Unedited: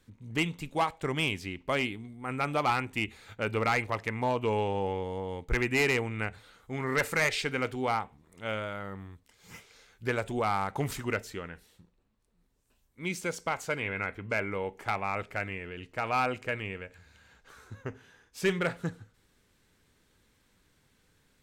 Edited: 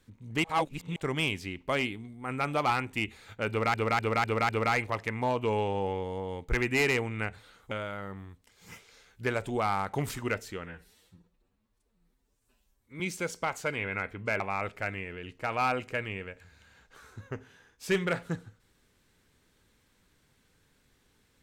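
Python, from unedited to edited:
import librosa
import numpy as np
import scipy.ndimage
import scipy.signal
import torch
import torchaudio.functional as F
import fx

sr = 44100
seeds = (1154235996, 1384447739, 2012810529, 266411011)

y = fx.edit(x, sr, fx.reverse_span(start_s=0.44, length_s=0.52),
    fx.repeat(start_s=3.49, length_s=0.25, count=5),
    fx.cut(start_s=6.71, length_s=1.82),
    fx.stretch_span(start_s=11.48, length_s=1.56, factor=1.5),
    fx.cut(start_s=14.44, length_s=0.5), tone=tone)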